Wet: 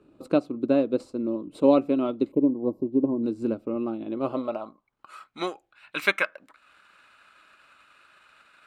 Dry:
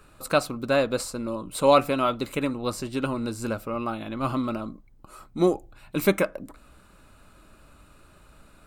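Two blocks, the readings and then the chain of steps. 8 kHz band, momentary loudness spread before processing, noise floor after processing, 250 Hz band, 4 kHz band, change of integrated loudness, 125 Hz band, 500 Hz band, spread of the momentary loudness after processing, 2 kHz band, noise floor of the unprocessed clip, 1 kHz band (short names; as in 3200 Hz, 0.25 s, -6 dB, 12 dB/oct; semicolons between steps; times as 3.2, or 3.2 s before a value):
under -15 dB, 13 LU, -71 dBFS, +3.5 dB, -5.5 dB, 0.0 dB, -7.5 dB, -1.5 dB, 12 LU, +2.0 dB, -55 dBFS, -7.0 dB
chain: spectral gain 2.32–3.23, 1100–11000 Hz -24 dB; resonant high shelf 2200 Hz +6.5 dB, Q 1.5; transient shaper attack +3 dB, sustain -5 dB; band-pass sweep 310 Hz -> 1600 Hz, 4.01–5.11; gain +7.5 dB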